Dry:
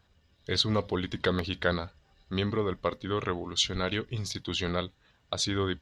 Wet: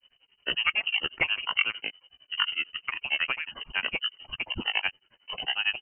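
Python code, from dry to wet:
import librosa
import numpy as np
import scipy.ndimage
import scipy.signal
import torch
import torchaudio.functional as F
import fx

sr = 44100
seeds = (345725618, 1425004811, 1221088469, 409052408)

y = fx.granulator(x, sr, seeds[0], grain_ms=100.0, per_s=11.0, spray_ms=100.0, spread_st=12)
y = fx.freq_invert(y, sr, carrier_hz=3000)
y = F.gain(torch.from_numpy(y), 4.0).numpy()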